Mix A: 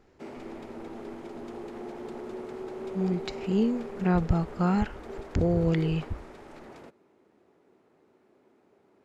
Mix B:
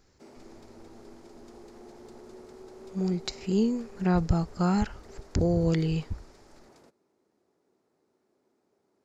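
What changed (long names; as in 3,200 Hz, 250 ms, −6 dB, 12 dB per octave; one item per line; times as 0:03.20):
background −9.5 dB
master: add high shelf with overshoot 3,800 Hz +8 dB, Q 1.5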